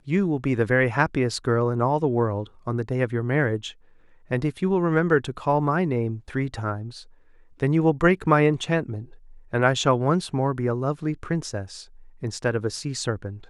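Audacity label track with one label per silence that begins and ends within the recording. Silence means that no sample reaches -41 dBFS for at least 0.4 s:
3.730000	4.310000	silence
7.030000	7.600000	silence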